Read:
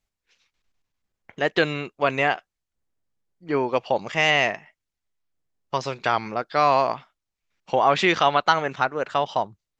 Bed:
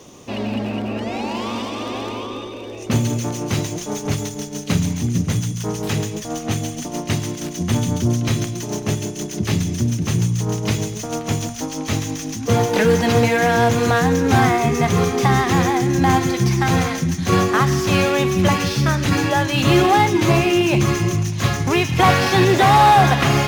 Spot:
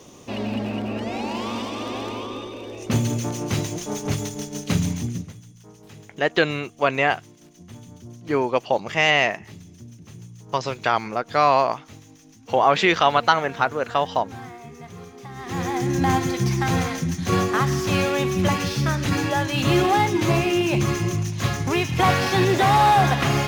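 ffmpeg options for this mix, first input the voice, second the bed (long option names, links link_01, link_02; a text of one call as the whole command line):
ffmpeg -i stem1.wav -i stem2.wav -filter_complex "[0:a]adelay=4800,volume=1.5dB[link_01];[1:a]volume=15.5dB,afade=type=out:start_time=4.91:duration=0.42:silence=0.1,afade=type=in:start_time=15.35:duration=0.53:silence=0.11885[link_02];[link_01][link_02]amix=inputs=2:normalize=0" out.wav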